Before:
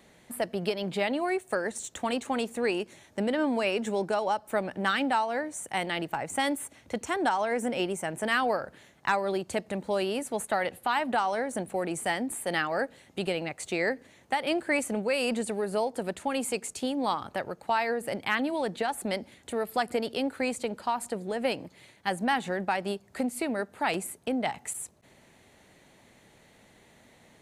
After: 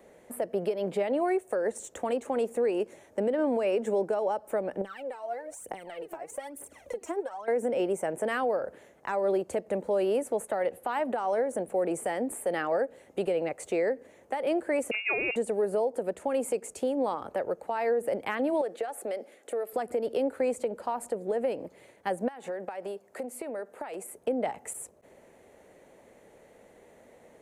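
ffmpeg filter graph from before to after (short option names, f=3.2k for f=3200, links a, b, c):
-filter_complex "[0:a]asettb=1/sr,asplit=3[a][b][c];[a]atrim=end=4.814[d];[b]atrim=start=4.81:end=7.48,asetpts=PTS-STARTPTS,afade=t=in:d=0.004:c=qsin,afade=t=out:st=2.666:d=0.004:c=qsin,bass=f=250:g=-3,treble=f=4k:g=2,acompressor=threshold=-41dB:ratio=8:attack=3.2:release=140:knee=1:detection=peak,aphaser=in_gain=1:out_gain=1:delay=3.2:decay=0.74:speed=1.1:type=triangular[e];[c]atrim=start=7.476[f];[d][e]acrossfade=d=0.004:c1=hsin:c2=qsin[g];[g][f]acrossfade=d=0.004:c1=qsin:c2=hsin,asettb=1/sr,asplit=3[h][i][j];[h]atrim=end=14.914[k];[i]atrim=start=14.91:end=15.36,asetpts=PTS-STARTPTS,afade=t=in:d=0.004:c=qsin,afade=t=out:st=0.446:d=0.004:c=qsin,equalizer=f=800:w=2:g=14,lowpass=f=2.6k:t=q:w=0.5098,lowpass=f=2.6k:t=q:w=0.6013,lowpass=f=2.6k:t=q:w=0.9,lowpass=f=2.6k:t=q:w=2.563,afreqshift=-3000[l];[j]atrim=start=15.356[m];[k][l]acrossfade=d=0.004:c1=hsin:c2=qsin[n];[n][m]acrossfade=d=0.004:c1=qsin:c2=hsin,asettb=1/sr,asplit=3[o][p][q];[o]atrim=end=18.614[r];[p]atrim=start=18.61:end=19.73,asetpts=PTS-STARTPTS,afade=t=in:d=0.004:c=qsin,afade=t=out:st=1.116:d=0.004:c=qsin,highpass=380,bandreject=f=950:w=6.3,acompressor=threshold=-34dB:ratio=5:attack=3.2:release=140:knee=1:detection=peak[s];[q]atrim=start=19.726[t];[r][s]acrossfade=d=0.004:c1=hsin:c2=qsin[u];[u][t]acrossfade=d=0.004:c1=qsin:c2=hsin,asettb=1/sr,asplit=3[v][w][x];[v]atrim=end=22.284[y];[w]atrim=start=22.28:end=24.14,asetpts=PTS-STARTPTS,afade=t=in:d=0.004:c=qsin,afade=t=out:st=1.856:d=0.004:c=qsin,highpass=f=370:p=1,acompressor=threshold=-35dB:ratio=20:attack=3.2:release=140:knee=1:detection=peak[z];[x]atrim=start=24.136[aa];[y][z]acrossfade=d=0.004:c1=hsin:c2=qsin[ab];[ab][aa]acrossfade=d=0.004:c1=qsin:c2=hsin,equalizer=f=125:t=o:w=1:g=-5,equalizer=f=500:t=o:w=1:g=12,equalizer=f=4k:t=o:w=1:g=-9,acrossover=split=360[ac][ad];[ad]acompressor=threshold=-22dB:ratio=3[ae];[ac][ae]amix=inputs=2:normalize=0,alimiter=limit=-17.5dB:level=0:latency=1:release=198,volume=-2dB"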